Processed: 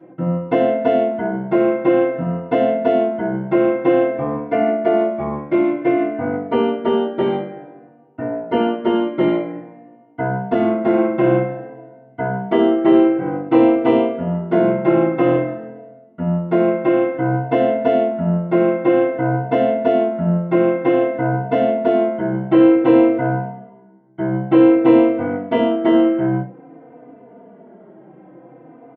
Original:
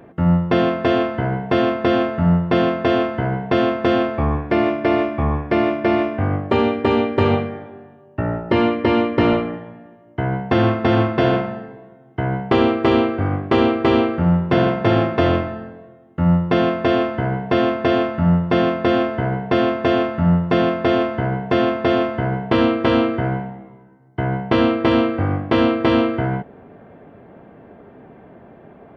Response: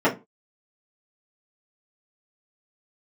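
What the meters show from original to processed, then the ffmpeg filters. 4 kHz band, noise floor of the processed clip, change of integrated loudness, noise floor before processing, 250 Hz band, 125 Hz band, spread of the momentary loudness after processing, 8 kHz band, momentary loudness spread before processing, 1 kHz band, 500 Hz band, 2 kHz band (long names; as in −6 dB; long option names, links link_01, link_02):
−8.5 dB, −45 dBFS, +1.5 dB, −46 dBFS, +2.0 dB, −4.5 dB, 10 LU, can't be measured, 8 LU, −1.0 dB, +2.5 dB, −4.0 dB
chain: -filter_complex "[1:a]atrim=start_sample=2205,asetrate=48510,aresample=44100[link_01];[0:a][link_01]afir=irnorm=-1:irlink=0,asplit=2[link_02][link_03];[link_03]adelay=3.3,afreqshift=-0.53[link_04];[link_02][link_04]amix=inputs=2:normalize=1,volume=-17.5dB"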